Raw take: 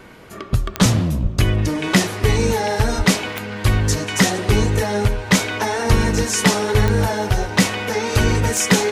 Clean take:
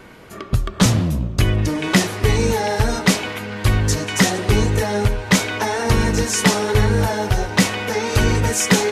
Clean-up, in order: de-click; de-plosive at 1.22/2.97/5.89/8.17

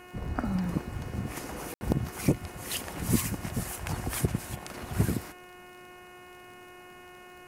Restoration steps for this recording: de-click; de-hum 361 Hz, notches 8; room tone fill 1.74–1.81

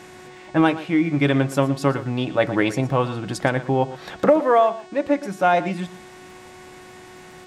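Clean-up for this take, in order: de-click; de-hum 367.7 Hz, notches 24; inverse comb 0.118 s -15.5 dB

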